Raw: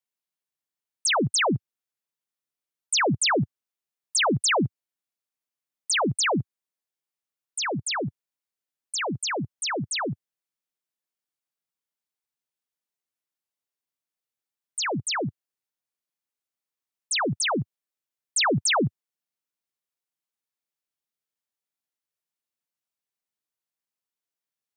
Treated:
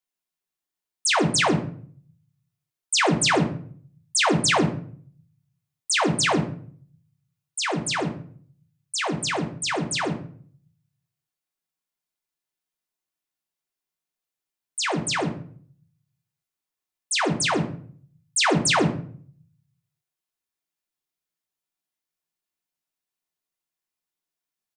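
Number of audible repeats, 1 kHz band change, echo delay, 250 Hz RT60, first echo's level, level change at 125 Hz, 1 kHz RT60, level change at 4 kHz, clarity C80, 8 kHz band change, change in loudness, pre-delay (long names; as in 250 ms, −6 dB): 1, +2.5 dB, 136 ms, 0.70 s, −22.0 dB, +3.0 dB, 0.50 s, +2.0 dB, 14.0 dB, +1.5 dB, +2.0 dB, 3 ms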